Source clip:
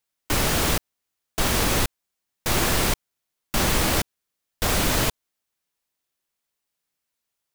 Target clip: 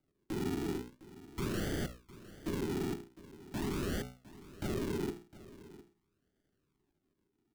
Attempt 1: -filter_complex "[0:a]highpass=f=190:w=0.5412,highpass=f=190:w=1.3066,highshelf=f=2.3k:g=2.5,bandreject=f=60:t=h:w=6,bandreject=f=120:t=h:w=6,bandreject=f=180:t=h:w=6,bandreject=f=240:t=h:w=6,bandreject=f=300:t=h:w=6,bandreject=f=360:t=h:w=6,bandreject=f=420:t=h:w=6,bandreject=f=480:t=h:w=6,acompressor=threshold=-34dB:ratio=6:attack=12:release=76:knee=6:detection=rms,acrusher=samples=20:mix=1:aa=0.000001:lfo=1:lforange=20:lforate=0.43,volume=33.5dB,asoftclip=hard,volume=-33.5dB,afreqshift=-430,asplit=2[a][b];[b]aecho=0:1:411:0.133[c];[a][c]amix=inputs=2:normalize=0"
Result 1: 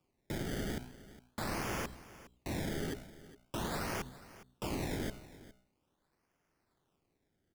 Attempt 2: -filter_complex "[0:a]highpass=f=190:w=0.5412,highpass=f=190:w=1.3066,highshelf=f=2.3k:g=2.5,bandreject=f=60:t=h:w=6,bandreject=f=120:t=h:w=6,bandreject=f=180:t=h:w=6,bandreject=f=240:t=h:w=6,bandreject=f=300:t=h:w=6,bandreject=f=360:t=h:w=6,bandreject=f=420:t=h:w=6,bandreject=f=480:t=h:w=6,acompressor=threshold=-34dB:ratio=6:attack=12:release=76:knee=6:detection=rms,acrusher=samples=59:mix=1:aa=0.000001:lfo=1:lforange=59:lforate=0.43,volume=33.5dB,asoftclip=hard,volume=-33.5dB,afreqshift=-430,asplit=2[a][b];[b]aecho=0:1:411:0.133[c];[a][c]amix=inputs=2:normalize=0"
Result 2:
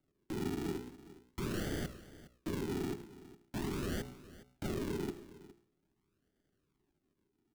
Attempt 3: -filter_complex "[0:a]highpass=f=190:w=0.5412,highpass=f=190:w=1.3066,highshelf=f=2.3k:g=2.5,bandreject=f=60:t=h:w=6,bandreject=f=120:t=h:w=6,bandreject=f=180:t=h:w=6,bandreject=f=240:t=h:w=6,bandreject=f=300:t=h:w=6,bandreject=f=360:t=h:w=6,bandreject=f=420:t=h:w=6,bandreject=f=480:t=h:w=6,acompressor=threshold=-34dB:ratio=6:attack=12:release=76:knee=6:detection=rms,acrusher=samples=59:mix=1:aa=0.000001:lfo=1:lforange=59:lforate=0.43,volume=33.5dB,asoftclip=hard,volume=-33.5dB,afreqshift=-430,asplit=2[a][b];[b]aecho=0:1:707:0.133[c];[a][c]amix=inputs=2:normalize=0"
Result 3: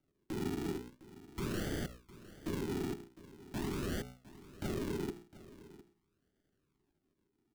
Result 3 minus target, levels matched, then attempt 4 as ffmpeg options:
compressor: peak gain reduction +5.5 dB
-filter_complex "[0:a]highpass=f=190:w=0.5412,highpass=f=190:w=1.3066,highshelf=f=2.3k:g=2.5,bandreject=f=60:t=h:w=6,bandreject=f=120:t=h:w=6,bandreject=f=180:t=h:w=6,bandreject=f=240:t=h:w=6,bandreject=f=300:t=h:w=6,bandreject=f=360:t=h:w=6,bandreject=f=420:t=h:w=6,bandreject=f=480:t=h:w=6,acompressor=threshold=-27.5dB:ratio=6:attack=12:release=76:knee=6:detection=rms,acrusher=samples=59:mix=1:aa=0.000001:lfo=1:lforange=59:lforate=0.43,volume=33.5dB,asoftclip=hard,volume=-33.5dB,afreqshift=-430,asplit=2[a][b];[b]aecho=0:1:707:0.133[c];[a][c]amix=inputs=2:normalize=0"

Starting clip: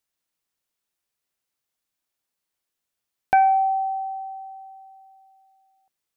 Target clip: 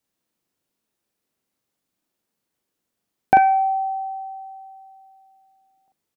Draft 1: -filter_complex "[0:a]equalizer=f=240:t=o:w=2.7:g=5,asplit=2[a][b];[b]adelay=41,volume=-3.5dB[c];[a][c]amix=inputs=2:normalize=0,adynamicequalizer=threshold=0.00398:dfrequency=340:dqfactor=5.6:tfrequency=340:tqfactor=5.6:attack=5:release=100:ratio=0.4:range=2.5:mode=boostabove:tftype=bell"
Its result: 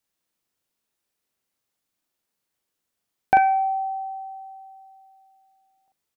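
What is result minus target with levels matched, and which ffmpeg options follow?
250 Hz band -4.5 dB
-filter_complex "[0:a]equalizer=f=240:t=o:w=2.7:g=12.5,asplit=2[a][b];[b]adelay=41,volume=-3.5dB[c];[a][c]amix=inputs=2:normalize=0,adynamicequalizer=threshold=0.00398:dfrequency=340:dqfactor=5.6:tfrequency=340:tqfactor=5.6:attack=5:release=100:ratio=0.4:range=2.5:mode=boostabove:tftype=bell"

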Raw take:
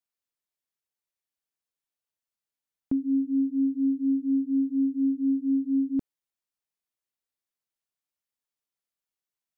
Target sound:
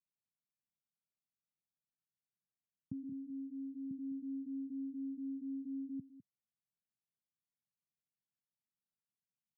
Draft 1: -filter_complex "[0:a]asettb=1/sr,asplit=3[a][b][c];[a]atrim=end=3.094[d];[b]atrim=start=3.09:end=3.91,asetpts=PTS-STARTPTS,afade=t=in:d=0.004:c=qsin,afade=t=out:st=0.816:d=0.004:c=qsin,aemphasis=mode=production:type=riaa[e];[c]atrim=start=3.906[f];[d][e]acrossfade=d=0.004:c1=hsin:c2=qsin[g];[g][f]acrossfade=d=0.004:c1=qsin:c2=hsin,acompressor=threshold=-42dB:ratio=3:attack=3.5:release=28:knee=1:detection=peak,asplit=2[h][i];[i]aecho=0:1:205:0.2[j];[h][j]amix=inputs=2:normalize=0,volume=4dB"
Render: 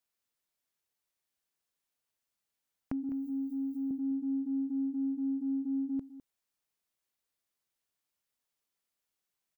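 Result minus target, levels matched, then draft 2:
125 Hz band -7.5 dB
-filter_complex "[0:a]asettb=1/sr,asplit=3[a][b][c];[a]atrim=end=3.094[d];[b]atrim=start=3.09:end=3.91,asetpts=PTS-STARTPTS,afade=t=in:d=0.004:c=qsin,afade=t=out:st=0.816:d=0.004:c=qsin,aemphasis=mode=production:type=riaa[e];[c]atrim=start=3.906[f];[d][e]acrossfade=d=0.004:c1=hsin:c2=qsin[g];[g][f]acrossfade=d=0.004:c1=qsin:c2=hsin,acompressor=threshold=-42dB:ratio=3:attack=3.5:release=28:knee=1:detection=peak,asuperpass=centerf=150:order=4:qfactor=1.3,asplit=2[h][i];[i]aecho=0:1:205:0.2[j];[h][j]amix=inputs=2:normalize=0,volume=4dB"

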